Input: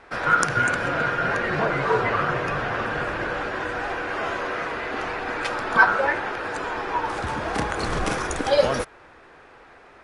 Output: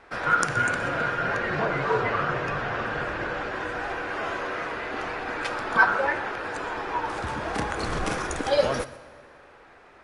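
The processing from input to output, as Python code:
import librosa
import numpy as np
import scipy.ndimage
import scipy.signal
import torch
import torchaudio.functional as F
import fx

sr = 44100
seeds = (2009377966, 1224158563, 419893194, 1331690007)

y = fx.lowpass(x, sr, hz=8800.0, slope=12, at=(1.22, 3.52))
y = y + 10.0 ** (-19.5 / 20.0) * np.pad(y, (int(123 * sr / 1000.0), 0))[:len(y)]
y = fx.rev_plate(y, sr, seeds[0], rt60_s=1.9, hf_ratio=0.85, predelay_ms=0, drr_db=16.0)
y = F.gain(torch.from_numpy(y), -3.0).numpy()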